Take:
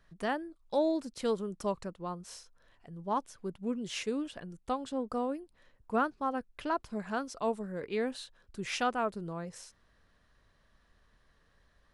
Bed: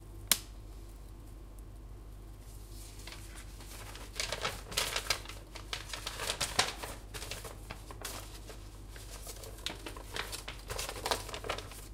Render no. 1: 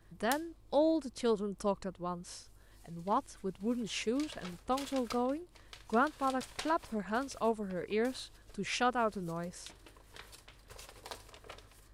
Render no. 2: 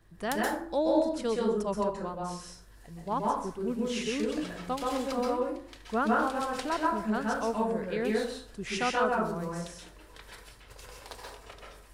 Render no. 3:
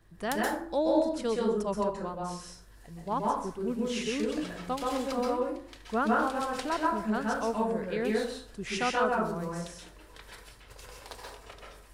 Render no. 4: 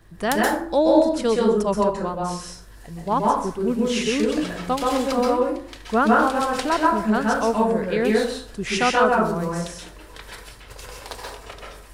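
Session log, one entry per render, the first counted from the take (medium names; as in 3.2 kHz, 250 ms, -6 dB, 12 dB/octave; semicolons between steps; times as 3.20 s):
add bed -13 dB
plate-style reverb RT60 0.56 s, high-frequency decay 0.55×, pre-delay 115 ms, DRR -3 dB
no audible change
trim +9.5 dB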